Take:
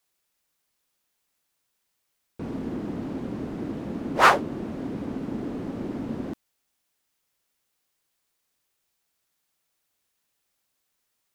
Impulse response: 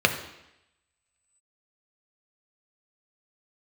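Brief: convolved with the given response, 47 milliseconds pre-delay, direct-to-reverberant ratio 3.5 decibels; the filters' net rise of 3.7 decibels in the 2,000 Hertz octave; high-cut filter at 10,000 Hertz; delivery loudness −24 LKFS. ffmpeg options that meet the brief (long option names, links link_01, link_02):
-filter_complex "[0:a]lowpass=10000,equalizer=frequency=2000:width_type=o:gain=5,asplit=2[link_01][link_02];[1:a]atrim=start_sample=2205,adelay=47[link_03];[link_02][link_03]afir=irnorm=-1:irlink=0,volume=-20.5dB[link_04];[link_01][link_04]amix=inputs=2:normalize=0,volume=0.5dB"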